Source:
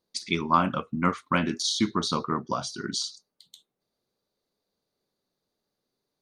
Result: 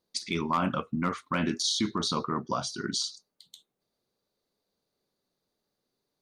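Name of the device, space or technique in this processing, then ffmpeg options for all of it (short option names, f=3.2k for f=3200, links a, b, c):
clipper into limiter: -af "asoftclip=type=hard:threshold=-12dB,alimiter=limit=-18dB:level=0:latency=1:release=20"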